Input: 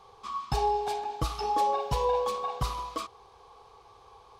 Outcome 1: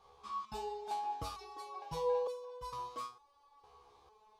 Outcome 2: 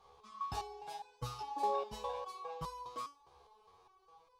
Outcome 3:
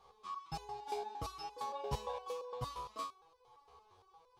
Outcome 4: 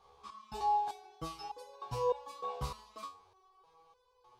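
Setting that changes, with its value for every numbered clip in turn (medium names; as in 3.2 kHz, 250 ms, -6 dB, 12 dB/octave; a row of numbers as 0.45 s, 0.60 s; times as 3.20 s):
resonator arpeggio, rate: 2.2 Hz, 4.9 Hz, 8.7 Hz, 3.3 Hz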